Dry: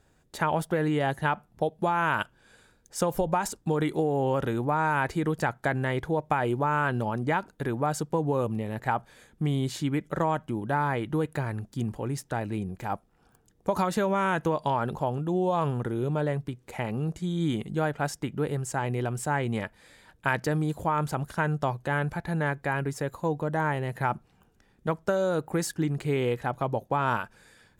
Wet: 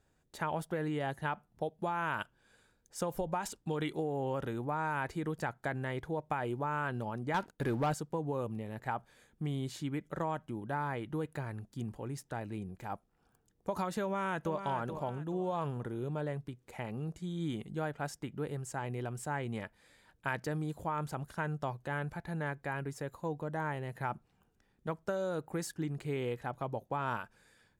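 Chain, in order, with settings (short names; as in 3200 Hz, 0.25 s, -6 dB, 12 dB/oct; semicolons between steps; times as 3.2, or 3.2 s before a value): 3.42–3.93 dynamic EQ 3000 Hz, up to +8 dB, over -53 dBFS, Q 1.4; 7.34–7.94 sample leveller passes 2; 14.02–14.66 echo throw 0.43 s, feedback 35%, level -8.5 dB; gain -9 dB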